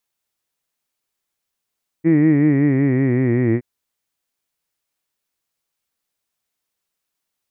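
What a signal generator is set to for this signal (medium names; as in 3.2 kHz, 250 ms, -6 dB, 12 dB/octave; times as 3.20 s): formant vowel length 1.57 s, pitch 159 Hz, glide -5.5 st, F1 320 Hz, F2 1.9 kHz, F3 2.3 kHz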